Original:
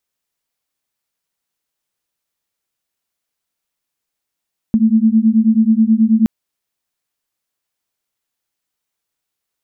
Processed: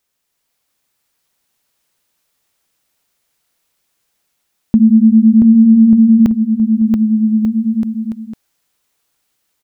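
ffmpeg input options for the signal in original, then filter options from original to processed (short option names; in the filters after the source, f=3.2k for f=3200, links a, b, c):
-f lavfi -i "aevalsrc='0.251*(sin(2*PI*217*t)+sin(2*PI*226.3*t))':d=1.52:s=44100"
-filter_complex "[0:a]asplit=2[a][b];[b]alimiter=limit=-15dB:level=0:latency=1,volume=2dB[c];[a][c]amix=inputs=2:normalize=0,dynaudnorm=f=250:g=3:m=3dB,aecho=1:1:680|1190|1572|1859|2075:0.631|0.398|0.251|0.158|0.1"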